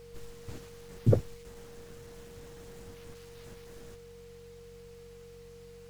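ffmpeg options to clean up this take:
-af "bandreject=f=46.2:t=h:w=4,bandreject=f=92.4:t=h:w=4,bandreject=f=138.6:t=h:w=4,bandreject=f=184.8:t=h:w=4,bandreject=f=470:w=30"

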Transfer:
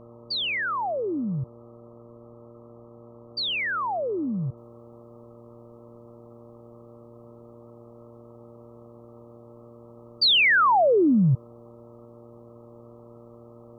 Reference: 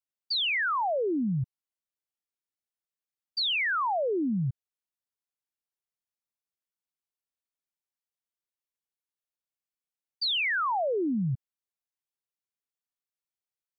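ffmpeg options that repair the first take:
-af "bandreject=f=117.5:t=h:w=4,bandreject=f=235:t=h:w=4,bandreject=f=352.5:t=h:w=4,bandreject=f=470:t=h:w=4,bandreject=f=587.5:t=h:w=4,afwtdn=0.005,asetnsamples=n=441:p=0,asendcmd='4.57 volume volume -9dB',volume=0dB"

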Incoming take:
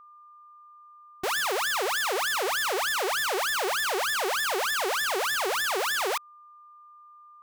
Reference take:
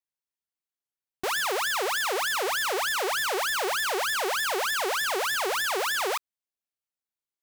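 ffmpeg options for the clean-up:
-af "bandreject=f=1.2k:w=30"

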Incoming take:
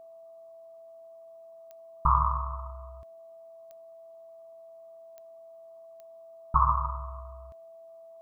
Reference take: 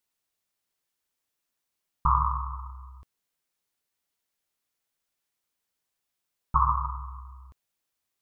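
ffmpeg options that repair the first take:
-af "adeclick=t=4,bandreject=f=660:w=30,afftdn=nr=30:nf=-50"

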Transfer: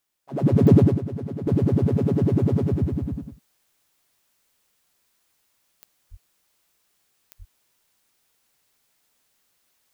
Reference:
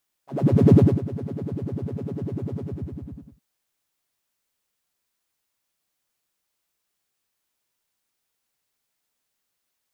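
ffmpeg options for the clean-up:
-filter_complex "[0:a]adeclick=t=4,asplit=3[a][b][c];[a]afade=t=out:st=6.1:d=0.02[d];[b]highpass=f=140:w=0.5412,highpass=f=140:w=1.3066,afade=t=in:st=6.1:d=0.02,afade=t=out:st=6.22:d=0.02[e];[c]afade=t=in:st=6.22:d=0.02[f];[d][e][f]amix=inputs=3:normalize=0,asplit=3[g][h][i];[g]afade=t=out:st=7.38:d=0.02[j];[h]highpass=f=140:w=0.5412,highpass=f=140:w=1.3066,afade=t=in:st=7.38:d=0.02,afade=t=out:st=7.5:d=0.02[k];[i]afade=t=in:st=7.5:d=0.02[l];[j][k][l]amix=inputs=3:normalize=0,asetnsamples=n=441:p=0,asendcmd='1.47 volume volume -9.5dB',volume=0dB"

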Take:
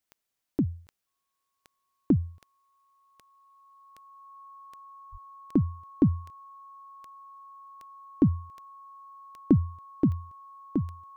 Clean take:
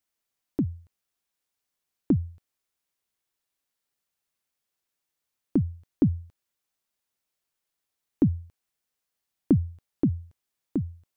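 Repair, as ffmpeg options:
-filter_complex "[0:a]adeclick=t=4,bandreject=f=1.1k:w=30,asplit=3[a][b][c];[a]afade=t=out:st=5.11:d=0.02[d];[b]highpass=f=140:w=0.5412,highpass=f=140:w=1.3066,afade=t=in:st=5.11:d=0.02,afade=t=out:st=5.23:d=0.02[e];[c]afade=t=in:st=5.23:d=0.02[f];[d][e][f]amix=inputs=3:normalize=0"

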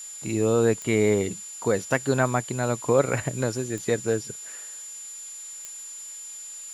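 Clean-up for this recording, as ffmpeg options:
-af "adeclick=t=4,bandreject=f=7.1k:w=30,afftdn=nr=30:nf=-40"

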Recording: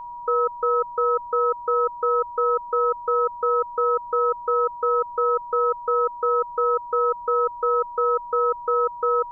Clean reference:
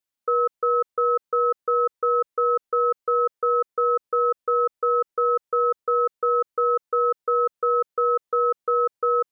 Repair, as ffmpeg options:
-af "bandreject=f=960:w=30,agate=range=-21dB:threshold=-28dB"

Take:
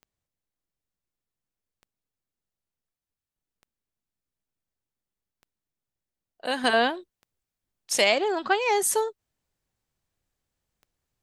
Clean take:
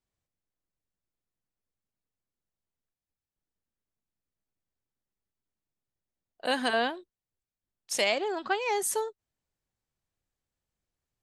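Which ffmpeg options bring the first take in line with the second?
-af "adeclick=t=4,asetnsamples=n=441:p=0,asendcmd='6.64 volume volume -5.5dB',volume=0dB"

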